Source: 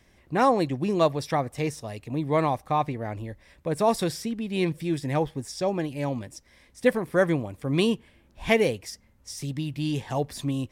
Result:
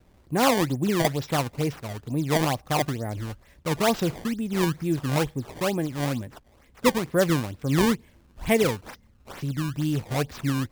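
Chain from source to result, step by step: bass shelf 390 Hz +6.5 dB; decimation with a swept rate 19×, swing 160% 2.2 Hz; trim -2.5 dB

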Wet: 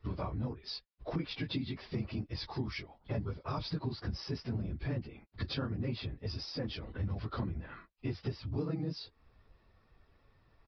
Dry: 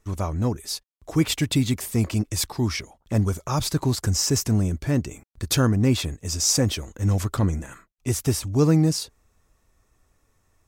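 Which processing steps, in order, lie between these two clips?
phase randomisation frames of 50 ms; compression 5:1, threshold -35 dBFS, peak gain reduction 19.5 dB; resampled via 11.025 kHz

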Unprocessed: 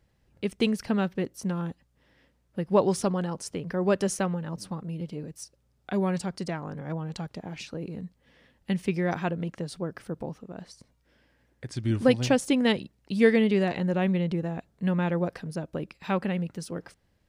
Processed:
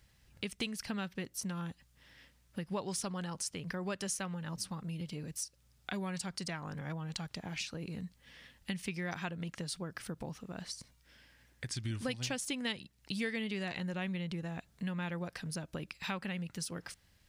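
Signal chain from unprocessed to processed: amplifier tone stack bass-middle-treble 5-5-5; compression 3:1, threshold -54 dBFS, peak gain reduction 16 dB; trim +15.5 dB

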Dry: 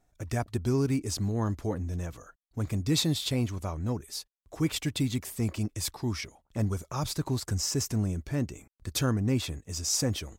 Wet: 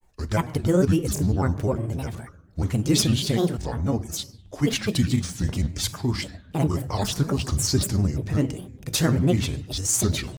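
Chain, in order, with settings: simulated room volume 240 m³, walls mixed, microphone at 0.31 m; granulator, spray 18 ms, pitch spread up and down by 7 st; trim +7 dB

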